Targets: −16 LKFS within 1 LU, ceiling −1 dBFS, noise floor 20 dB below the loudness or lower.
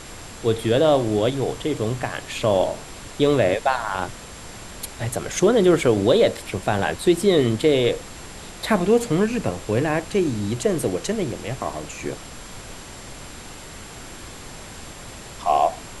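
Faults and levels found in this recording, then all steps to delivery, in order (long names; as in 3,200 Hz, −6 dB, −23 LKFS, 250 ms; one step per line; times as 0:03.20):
interfering tone 7,400 Hz; level of the tone −48 dBFS; background noise floor −39 dBFS; target noise floor −42 dBFS; integrated loudness −21.5 LKFS; sample peak −5.0 dBFS; target loudness −16.0 LKFS
→ notch filter 7,400 Hz, Q 30
noise reduction from a noise print 6 dB
level +5.5 dB
brickwall limiter −1 dBFS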